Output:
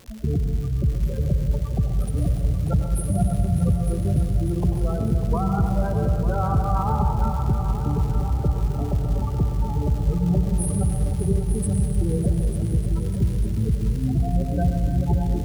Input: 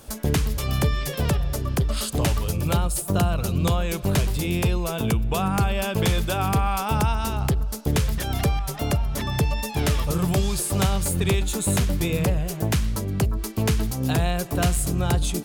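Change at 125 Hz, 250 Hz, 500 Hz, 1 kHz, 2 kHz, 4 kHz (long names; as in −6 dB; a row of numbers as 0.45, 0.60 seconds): +2.0 dB, +1.0 dB, −2.5 dB, −2.0 dB, −14.5 dB, below −15 dB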